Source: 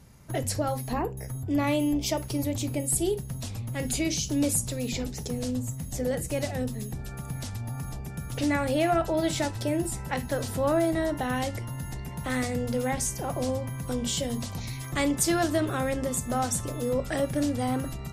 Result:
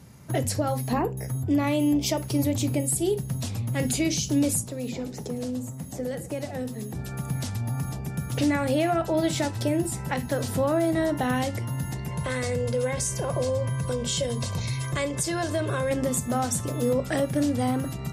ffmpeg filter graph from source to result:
-filter_complex "[0:a]asettb=1/sr,asplit=3[s0][s1][s2];[s0]atrim=end=4.634[s3];[s1]atrim=start=4.63:end=6.95,asetpts=PTS-STARTPTS,afade=t=in:d=0.004:c=qsin,afade=t=out:st=2.316:d=0.004:c=qsin,aecho=1:1:106:0.0944,atrim=end_sample=102312,acrossover=split=220|1500[s4][s5][s6];[s4]acompressor=threshold=0.00562:ratio=4[s7];[s5]acompressor=threshold=0.0178:ratio=4[s8];[s6]acompressor=threshold=0.00398:ratio=4[s9];[s7][s8][s9]amix=inputs=3:normalize=0[s10];[s2]atrim=start=6.946[s11];[s3][s10]acrossfade=d=0.004:c1=hsin:c2=qsin[s12];[s12][s11]acrossfade=d=0.004:c1=qsin:c2=hsin,asettb=1/sr,asplit=3[s13][s14][s15];[s13]atrim=end=12.084[s16];[s14]atrim=start=12.08:end=15.91,asetpts=PTS-STARTPTS,afade=t=in:d=0.004:c=qsin,afade=t=out:st=3.826:d=0.004:c=qsin,lowpass=f=11000:w=0.5412,lowpass=f=11000:w=1.3066,acompressor=threshold=0.0355:ratio=2.5:attack=3.2:release=140:knee=1:detection=peak,aecho=1:1:1.9:0.59,atrim=end_sample=168903[s17];[s15]atrim=start=15.906[s18];[s16][s17]acrossfade=d=0.004:c1=hsin:c2=qsin[s19];[s19][s18]acrossfade=d=0.004:c1=qsin:c2=hsin,highpass=110,lowshelf=f=200:g=6,alimiter=limit=0.119:level=0:latency=1:release=318,volume=1.5"

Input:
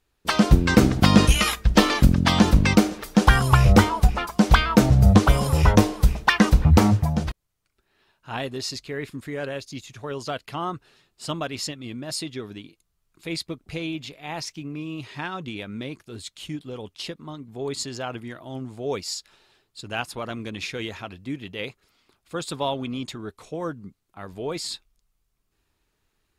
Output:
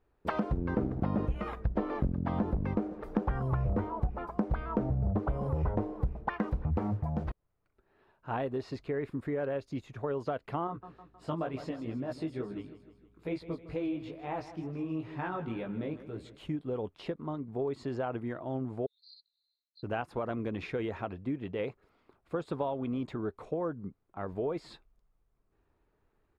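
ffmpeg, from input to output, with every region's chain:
-filter_complex "[0:a]asettb=1/sr,asplit=3[s0][s1][s2];[s0]atrim=end=0.574[s3];[s1]atrim=start=0.57:end=6.34,asetpts=PTS-STARTPTS,afade=t=in:d=0.004:c=qsin,afade=t=out:st=5.766:d=0.004:c=qsin,aeval=exprs='0.447*(abs(mod(val(0)/0.447+3,4)-2)-1)':c=same,tiltshelf=f=1400:g=5[s4];[s2]atrim=start=6.336[s5];[s3][s4]acrossfade=d=0.004:c1=hsin:c2=qsin[s6];[s6][s5]acrossfade=d=0.004:c1=qsin:c2=hsin,asettb=1/sr,asplit=3[s7][s8][s9];[s7]atrim=end=10.674[s10];[s8]atrim=start=10.67:end=16.38,asetpts=PTS-STARTPTS,afade=t=in:d=0.004:c=qsin,afade=t=out:st=5.706:d=0.004:c=qsin,flanger=delay=15:depth=3.9:speed=2.2,aeval=exprs='val(0)+0.000631*(sin(2*PI*60*n/s)+sin(2*PI*2*60*n/s)/2+sin(2*PI*3*60*n/s)/3+sin(2*PI*4*60*n/s)/4+sin(2*PI*5*60*n/s)/5)':c=same,aecho=1:1:157|314|471|628|785:0.178|0.096|0.0519|0.028|0.0151,atrim=end_sample=251811[s11];[s9]atrim=start=16.376[s12];[s10][s11]acrossfade=d=0.004:c1=hsin:c2=qsin[s13];[s13][s12]acrossfade=d=0.004:c1=qsin:c2=hsin,asettb=1/sr,asplit=3[s14][s15][s16];[s14]atrim=end=18.864[s17];[s15]atrim=start=18.86:end=19.83,asetpts=PTS-STARTPTS,afade=t=in:d=0.004:c=qsin,afade=t=out:st=0.966:d=0.004:c=qsin,asuperpass=centerf=4200:order=8:qfactor=5.5,aecho=1:1:1.7:0.89,atrim=end_sample=42777[s18];[s16]atrim=start=19.826[s19];[s17][s18]acrossfade=d=0.004:c1=hsin:c2=qsin[s20];[s20][s19]acrossfade=d=0.004:c1=qsin:c2=hsin,acrossover=split=4000[s21][s22];[s22]acompressor=threshold=0.0126:ratio=4:attack=1:release=60[s23];[s21][s23]amix=inputs=2:normalize=0,firequalizer=gain_entry='entry(200,0);entry(450,4);entry(3100,-14);entry(5900,-21)':delay=0.05:min_phase=1,acompressor=threshold=0.0316:ratio=5"

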